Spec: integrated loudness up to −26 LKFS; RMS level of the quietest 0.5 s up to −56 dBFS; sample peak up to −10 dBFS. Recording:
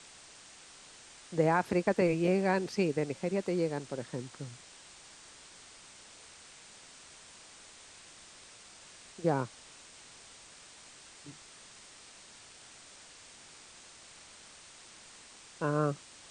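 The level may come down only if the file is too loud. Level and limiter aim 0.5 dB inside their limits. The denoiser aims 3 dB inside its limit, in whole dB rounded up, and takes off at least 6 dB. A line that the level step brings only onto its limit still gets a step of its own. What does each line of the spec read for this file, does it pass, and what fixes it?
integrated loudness −32.0 LKFS: in spec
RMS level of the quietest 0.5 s −54 dBFS: out of spec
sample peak −14.5 dBFS: in spec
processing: broadband denoise 6 dB, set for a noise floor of −54 dBFS

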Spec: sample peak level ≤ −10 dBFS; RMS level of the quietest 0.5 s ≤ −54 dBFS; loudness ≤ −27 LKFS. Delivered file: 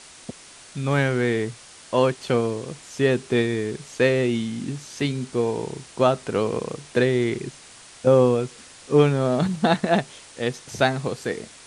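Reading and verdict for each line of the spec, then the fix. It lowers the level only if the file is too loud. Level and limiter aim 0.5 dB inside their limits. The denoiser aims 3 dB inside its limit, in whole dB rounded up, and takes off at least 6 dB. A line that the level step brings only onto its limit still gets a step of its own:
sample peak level −4.5 dBFS: out of spec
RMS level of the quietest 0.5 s −46 dBFS: out of spec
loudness −23.0 LKFS: out of spec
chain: broadband denoise 7 dB, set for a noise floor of −46 dBFS
level −4.5 dB
brickwall limiter −10.5 dBFS

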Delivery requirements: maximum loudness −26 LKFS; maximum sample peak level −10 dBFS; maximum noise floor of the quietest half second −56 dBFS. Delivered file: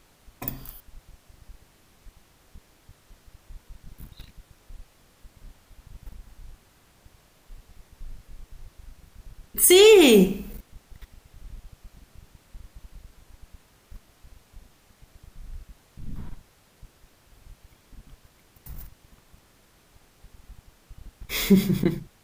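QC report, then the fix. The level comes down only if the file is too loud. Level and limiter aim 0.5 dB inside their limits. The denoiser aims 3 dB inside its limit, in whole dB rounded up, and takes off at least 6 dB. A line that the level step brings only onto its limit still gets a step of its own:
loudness −18.5 LKFS: out of spec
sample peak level −6.0 dBFS: out of spec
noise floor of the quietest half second −59 dBFS: in spec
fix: level −8 dB

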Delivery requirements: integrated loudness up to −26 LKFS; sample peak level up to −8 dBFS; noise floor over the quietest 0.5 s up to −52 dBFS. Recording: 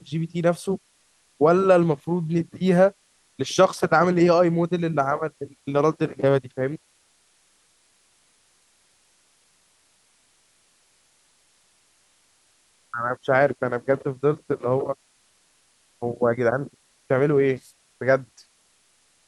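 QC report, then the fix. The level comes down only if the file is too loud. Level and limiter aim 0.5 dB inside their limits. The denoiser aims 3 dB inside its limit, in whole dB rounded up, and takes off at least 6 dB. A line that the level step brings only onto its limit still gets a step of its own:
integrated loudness −22.5 LKFS: out of spec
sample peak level −5.0 dBFS: out of spec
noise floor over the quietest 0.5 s −63 dBFS: in spec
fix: level −4 dB

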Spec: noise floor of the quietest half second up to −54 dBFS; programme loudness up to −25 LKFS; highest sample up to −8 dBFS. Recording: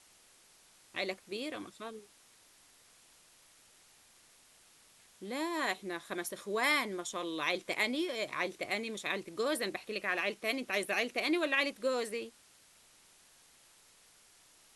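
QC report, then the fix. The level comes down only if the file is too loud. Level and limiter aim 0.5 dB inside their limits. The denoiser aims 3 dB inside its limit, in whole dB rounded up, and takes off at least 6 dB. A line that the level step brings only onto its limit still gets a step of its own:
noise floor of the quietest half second −63 dBFS: in spec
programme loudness −34.5 LKFS: in spec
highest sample −16.5 dBFS: in spec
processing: no processing needed

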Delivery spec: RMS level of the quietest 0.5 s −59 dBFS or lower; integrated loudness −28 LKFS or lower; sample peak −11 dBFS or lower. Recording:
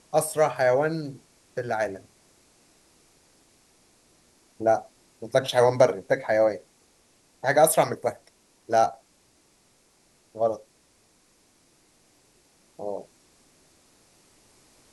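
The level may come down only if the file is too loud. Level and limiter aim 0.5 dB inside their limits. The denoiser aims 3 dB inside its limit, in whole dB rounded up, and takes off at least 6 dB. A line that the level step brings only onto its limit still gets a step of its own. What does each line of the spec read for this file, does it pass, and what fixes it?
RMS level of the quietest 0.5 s −63 dBFS: in spec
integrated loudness −24.5 LKFS: out of spec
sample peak −5.5 dBFS: out of spec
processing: level −4 dB
brickwall limiter −11.5 dBFS

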